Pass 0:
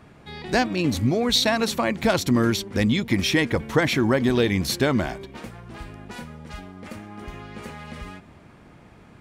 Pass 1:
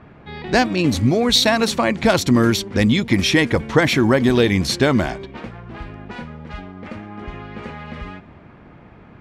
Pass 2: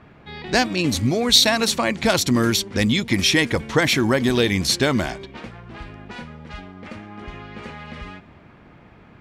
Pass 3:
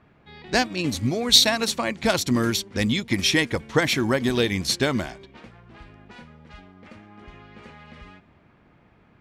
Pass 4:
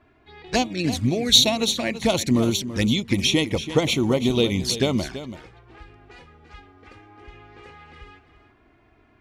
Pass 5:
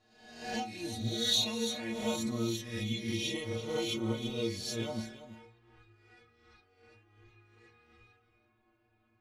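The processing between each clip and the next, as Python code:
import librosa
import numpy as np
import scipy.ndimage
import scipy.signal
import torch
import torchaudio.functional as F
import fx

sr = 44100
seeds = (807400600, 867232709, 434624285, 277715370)

y1 = fx.env_lowpass(x, sr, base_hz=2400.0, full_db=-17.0)
y1 = y1 * 10.0 ** (5.0 / 20.0)
y2 = fx.high_shelf(y1, sr, hz=2700.0, db=8.5)
y2 = y2 * 10.0 ** (-4.0 / 20.0)
y3 = fx.upward_expand(y2, sr, threshold_db=-29.0, expansion=1.5)
y4 = fx.env_flanger(y3, sr, rest_ms=3.0, full_db=-19.5)
y4 = y4 + 10.0 ** (-12.5 / 20.0) * np.pad(y4, (int(333 * sr / 1000.0), 0))[:len(y4)]
y4 = y4 * 10.0 ** (2.5 / 20.0)
y5 = fx.spec_swells(y4, sr, rise_s=0.84)
y5 = fx.stiff_resonator(y5, sr, f0_hz=110.0, decay_s=0.37, stiffness=0.008)
y5 = y5 * 10.0 ** (-6.0 / 20.0)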